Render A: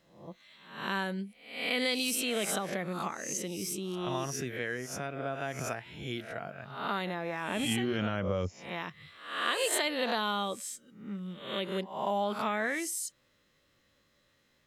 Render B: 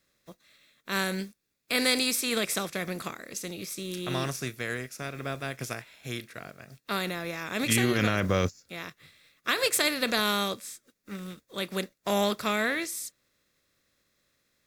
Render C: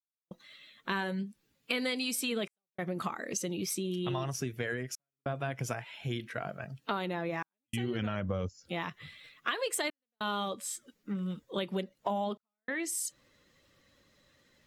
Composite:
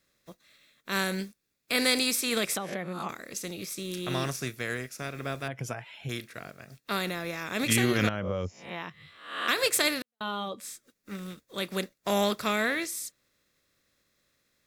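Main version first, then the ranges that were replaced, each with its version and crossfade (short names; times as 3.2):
B
2.57–3.09 from A
5.48–6.09 from C
8.09–9.48 from A
10.02–10.6 from C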